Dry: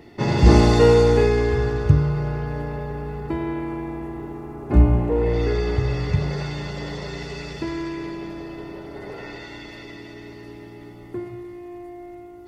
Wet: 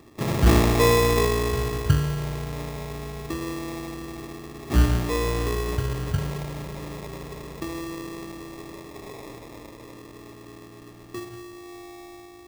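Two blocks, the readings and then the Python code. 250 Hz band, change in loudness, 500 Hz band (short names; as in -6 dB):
-5.0 dB, -4.0 dB, -5.5 dB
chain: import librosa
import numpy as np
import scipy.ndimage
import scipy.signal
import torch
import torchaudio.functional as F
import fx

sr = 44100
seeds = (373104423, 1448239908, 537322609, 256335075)

y = fx.sample_hold(x, sr, seeds[0], rate_hz=1500.0, jitter_pct=0)
y = F.gain(torch.from_numpy(y), -4.5).numpy()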